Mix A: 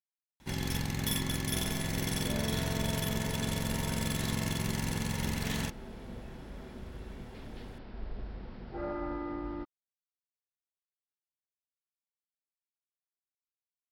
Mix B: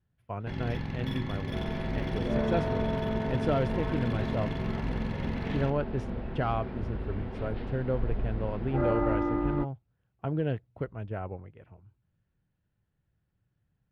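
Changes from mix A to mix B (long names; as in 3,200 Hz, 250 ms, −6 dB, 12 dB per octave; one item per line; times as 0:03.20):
speech: unmuted
second sound +9.5 dB
master: add high-frequency loss of the air 340 metres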